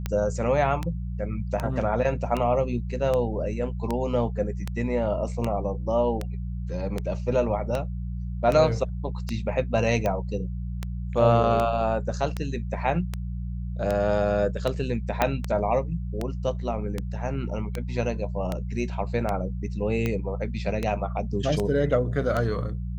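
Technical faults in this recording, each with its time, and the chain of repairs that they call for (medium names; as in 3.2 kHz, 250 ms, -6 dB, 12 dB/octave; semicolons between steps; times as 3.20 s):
hum 60 Hz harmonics 3 -31 dBFS
tick 78 rpm -14 dBFS
15.22 s: pop -7 dBFS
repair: de-click; de-hum 60 Hz, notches 3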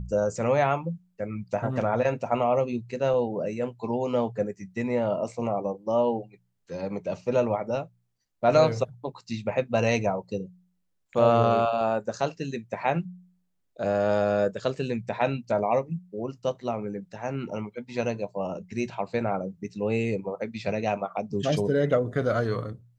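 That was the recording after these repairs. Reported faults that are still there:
15.22 s: pop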